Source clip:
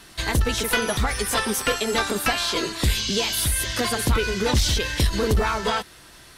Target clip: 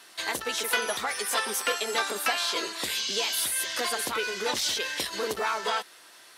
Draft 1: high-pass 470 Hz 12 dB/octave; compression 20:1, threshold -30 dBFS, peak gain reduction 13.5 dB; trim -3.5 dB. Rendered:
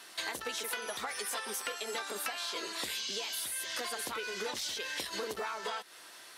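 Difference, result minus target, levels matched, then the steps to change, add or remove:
compression: peak gain reduction +13.5 dB
remove: compression 20:1, threshold -30 dBFS, peak gain reduction 13.5 dB

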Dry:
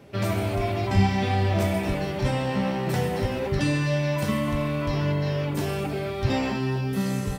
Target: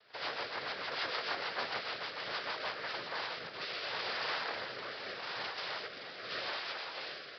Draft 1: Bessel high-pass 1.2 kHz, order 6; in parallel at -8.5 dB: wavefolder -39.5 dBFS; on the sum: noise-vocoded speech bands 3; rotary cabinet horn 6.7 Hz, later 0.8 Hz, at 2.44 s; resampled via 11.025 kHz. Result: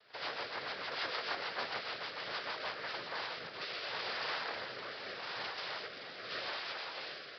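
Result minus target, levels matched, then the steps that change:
wavefolder: distortion +13 dB
change: wavefolder -33.5 dBFS

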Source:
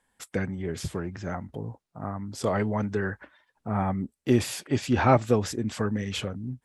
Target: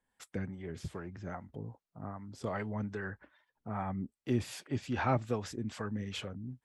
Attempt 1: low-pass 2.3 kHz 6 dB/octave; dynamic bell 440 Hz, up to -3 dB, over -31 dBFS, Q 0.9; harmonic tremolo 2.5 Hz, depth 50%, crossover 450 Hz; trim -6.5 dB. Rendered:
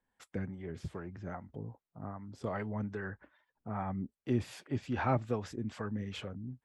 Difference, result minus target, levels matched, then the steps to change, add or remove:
8 kHz band -6.0 dB
change: low-pass 6.1 kHz 6 dB/octave

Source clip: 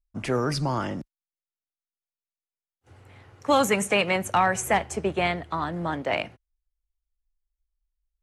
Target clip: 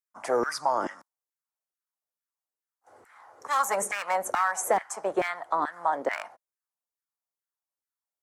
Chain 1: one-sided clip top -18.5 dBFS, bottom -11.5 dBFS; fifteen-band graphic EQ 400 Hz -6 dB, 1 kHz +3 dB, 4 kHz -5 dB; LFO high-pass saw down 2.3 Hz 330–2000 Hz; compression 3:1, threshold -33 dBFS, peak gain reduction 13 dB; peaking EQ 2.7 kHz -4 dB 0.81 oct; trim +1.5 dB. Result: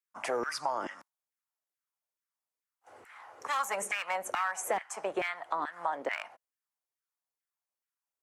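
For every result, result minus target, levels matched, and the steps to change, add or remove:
compression: peak gain reduction +8 dB; 2 kHz band +3.0 dB
change: compression 3:1, threshold -21 dBFS, peak gain reduction 5 dB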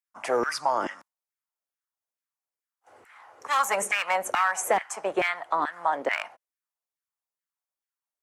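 2 kHz band +3.0 dB
change: peaking EQ 2.7 kHz -14.5 dB 0.81 oct

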